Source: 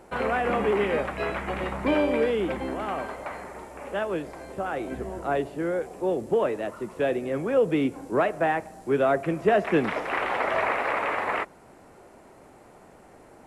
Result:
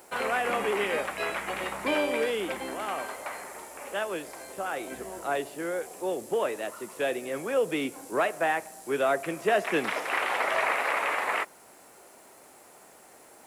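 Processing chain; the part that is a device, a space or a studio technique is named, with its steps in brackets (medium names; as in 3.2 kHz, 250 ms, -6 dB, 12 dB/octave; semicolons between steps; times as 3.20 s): turntable without a phono preamp (RIAA curve recording; white noise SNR 37 dB); trim -1.5 dB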